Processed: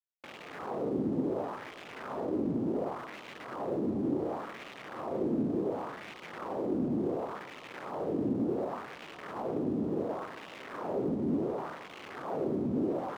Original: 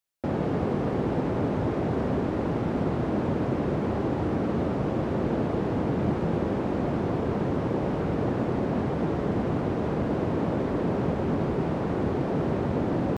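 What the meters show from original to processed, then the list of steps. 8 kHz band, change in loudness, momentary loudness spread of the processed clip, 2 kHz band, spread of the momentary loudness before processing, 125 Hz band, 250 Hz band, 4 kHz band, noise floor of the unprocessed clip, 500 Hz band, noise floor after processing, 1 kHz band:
no reading, -7.5 dB, 13 LU, -6.0 dB, 1 LU, -14.5 dB, -6.5 dB, -4.5 dB, -29 dBFS, -6.5 dB, -48 dBFS, -7.0 dB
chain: elliptic band-stop 1.3–3 kHz; in parallel at -9.5 dB: integer overflow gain 23 dB; on the sum: wah-wah 0.69 Hz 250–2500 Hz, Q 2.1; crossover distortion -58 dBFS

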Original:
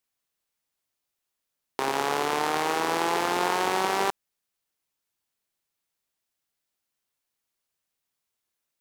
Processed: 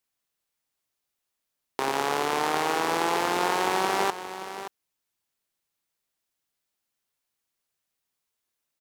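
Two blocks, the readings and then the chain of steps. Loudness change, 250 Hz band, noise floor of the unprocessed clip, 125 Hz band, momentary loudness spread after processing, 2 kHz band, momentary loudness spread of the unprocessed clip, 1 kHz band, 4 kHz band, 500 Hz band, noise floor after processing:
0.0 dB, +0.5 dB, -83 dBFS, +0.5 dB, 13 LU, +0.5 dB, 5 LU, +0.5 dB, +0.5 dB, +0.5 dB, -83 dBFS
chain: delay 575 ms -11.5 dB

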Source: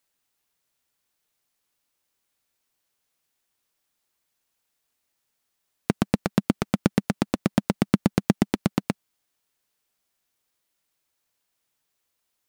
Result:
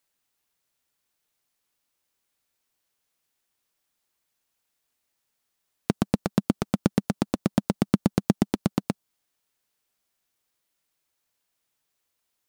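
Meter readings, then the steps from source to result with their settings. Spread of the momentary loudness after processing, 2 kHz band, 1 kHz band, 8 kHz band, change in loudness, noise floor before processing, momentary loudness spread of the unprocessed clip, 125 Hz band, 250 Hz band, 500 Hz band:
7 LU, -5.0 dB, -2.0 dB, -1.5 dB, -1.0 dB, -78 dBFS, 7 LU, -1.0 dB, -1.0 dB, -1.0 dB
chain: dynamic bell 2.1 kHz, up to -5 dB, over -51 dBFS, Q 1.2; trim -1 dB

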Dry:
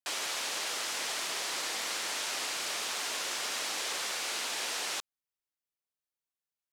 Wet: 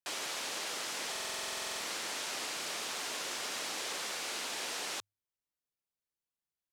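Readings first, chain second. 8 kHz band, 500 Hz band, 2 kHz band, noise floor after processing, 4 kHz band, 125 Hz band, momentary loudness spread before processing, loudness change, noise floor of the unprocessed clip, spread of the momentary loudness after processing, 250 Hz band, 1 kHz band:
-4.0 dB, -1.0 dB, -3.5 dB, under -85 dBFS, -4.0 dB, no reading, 0 LU, -3.5 dB, under -85 dBFS, 0 LU, +0.5 dB, -3.0 dB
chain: bass shelf 430 Hz +7 dB; hum notches 50/100 Hz; buffer glitch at 1.11 s, samples 2048, times 14; trim -4 dB

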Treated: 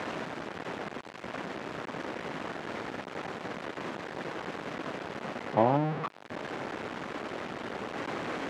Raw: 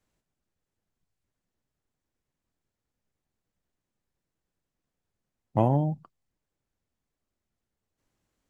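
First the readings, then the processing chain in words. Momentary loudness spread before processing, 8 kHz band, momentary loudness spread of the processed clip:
10 LU, no reading, 9 LU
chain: jump at every zero crossing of -23.5 dBFS; band-pass 260–2100 Hz

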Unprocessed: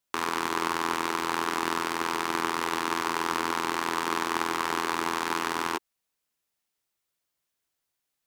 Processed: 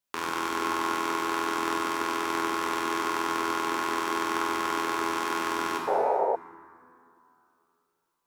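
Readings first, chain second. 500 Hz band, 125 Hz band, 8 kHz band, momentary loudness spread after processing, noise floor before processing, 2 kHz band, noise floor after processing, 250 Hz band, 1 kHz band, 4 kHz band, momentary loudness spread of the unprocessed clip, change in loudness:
+4.5 dB, -4.5 dB, -1.5 dB, 2 LU, -83 dBFS, -1.0 dB, -78 dBFS, +1.0 dB, +1.0 dB, -2.0 dB, 1 LU, +0.5 dB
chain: plate-style reverb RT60 2.9 s, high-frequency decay 0.4×, DRR -1.5 dB; painted sound noise, 5.87–6.36 s, 380–960 Hz -21 dBFS; trim -4 dB

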